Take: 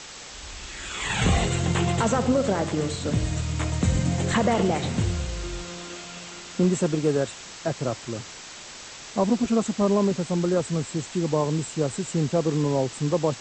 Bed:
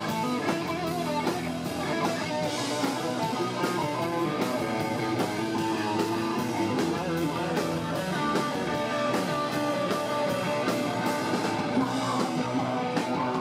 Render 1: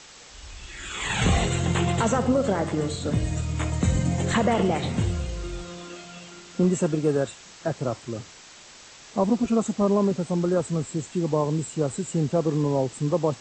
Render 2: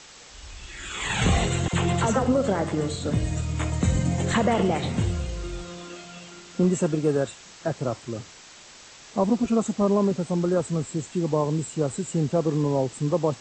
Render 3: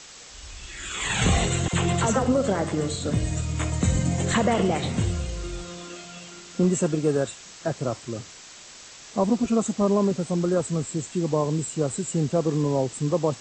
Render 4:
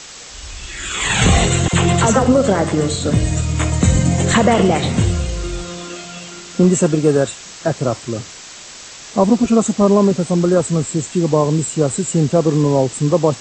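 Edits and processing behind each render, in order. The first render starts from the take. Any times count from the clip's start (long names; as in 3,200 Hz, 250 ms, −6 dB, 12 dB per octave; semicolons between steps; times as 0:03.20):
noise reduction from a noise print 6 dB
0:01.68–0:02.24: all-pass dispersion lows, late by 54 ms, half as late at 690 Hz
high-shelf EQ 6,200 Hz +7 dB; notch filter 870 Hz, Q 22
level +9 dB; brickwall limiter −2 dBFS, peak gain reduction 1.5 dB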